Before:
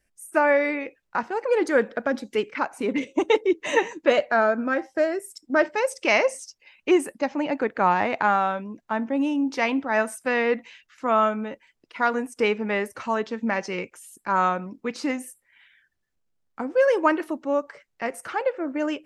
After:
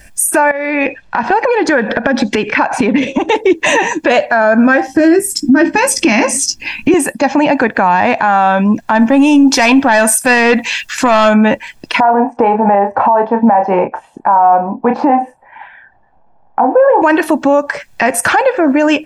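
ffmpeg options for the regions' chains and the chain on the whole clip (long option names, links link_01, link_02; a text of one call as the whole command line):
ffmpeg -i in.wav -filter_complex "[0:a]asettb=1/sr,asplit=3[link_01][link_02][link_03];[link_01]atrim=end=0.514[link_04];[link_02]atrim=start=0.51:end=3.29,asetpts=PTS-STARTPTS,afade=type=in:duration=0.004:curve=qsin,afade=type=out:start_time=2.776:duration=0.004:curve=qsin,lowpass=4300,acompressor=threshold=-34dB:ratio=10:attack=3.2:release=140:knee=1:detection=peak[link_05];[link_03]atrim=start=3.286[link_06];[link_04][link_05]acrossfade=duration=0.004:curve1=hsin:curve2=qsin[link_07];[link_07][link_06]acrossfade=duration=0.004:curve1=qsin:curve2=hsin,asettb=1/sr,asplit=3[link_08][link_09][link_10];[link_08]atrim=end=4.874[link_11];[link_09]atrim=start=4.87:end=6.94,asetpts=PTS-STARTPTS,afade=type=in:duration=0.004:curve=qsin,afade=type=out:start_time=2.066:duration=0.004:curve=qsin,lowshelf=frequency=390:width_type=q:width=3:gain=9.5,bandreject=frequency=3700:width=21,asplit=2[link_12][link_13];[link_13]adelay=18,volume=-8dB[link_14];[link_12][link_14]amix=inputs=2:normalize=0,atrim=end_sample=91287[link_15];[link_10]atrim=start=6.936[link_16];[link_11][link_15]acrossfade=duration=0.004:curve1=hsin:curve2=qsin[link_17];[link_17][link_16]acrossfade=duration=0.004:curve1=qsin:curve2=hsin,asettb=1/sr,asplit=3[link_18][link_19][link_20];[link_18]atrim=end=8.954[link_21];[link_19]atrim=start=8.95:end=11.34,asetpts=PTS-STARTPTS,afade=type=in:duration=0.004:curve=qsin,afade=type=out:start_time=2.386:duration=0.004:curve=qsin,aemphasis=mode=production:type=cd,aeval=exprs='(tanh(7.08*val(0)+0.05)-tanh(0.05))/7.08':channel_layout=same[link_22];[link_20]atrim=start=11.336[link_23];[link_21][link_22]acrossfade=duration=0.004:curve1=hsin:curve2=qsin[link_24];[link_24][link_23]acrossfade=duration=0.004:curve1=qsin:curve2=hsin,asettb=1/sr,asplit=3[link_25][link_26][link_27];[link_25]atrim=end=12.004[link_28];[link_26]atrim=start=12:end=17.02,asetpts=PTS-STARTPTS,afade=type=in:duration=0.004:curve=qsin,afade=type=out:start_time=5.016:duration=0.004:curve=qsin,lowpass=frequency=820:width_type=q:width=4,lowshelf=frequency=240:gain=-11,asplit=2[link_29][link_30];[link_30]adelay=30,volume=-8dB[link_31];[link_29][link_31]amix=inputs=2:normalize=0,atrim=end_sample=221382[link_32];[link_27]atrim=start=17.016[link_33];[link_28][link_32]acrossfade=duration=0.004:curve1=hsin:curve2=qsin[link_34];[link_34][link_33]acrossfade=duration=0.004:curve1=qsin:curve2=hsin,aecho=1:1:1.2:0.48,acompressor=threshold=-40dB:ratio=2,alimiter=level_in=31.5dB:limit=-1dB:release=50:level=0:latency=1,volume=-1dB" out.wav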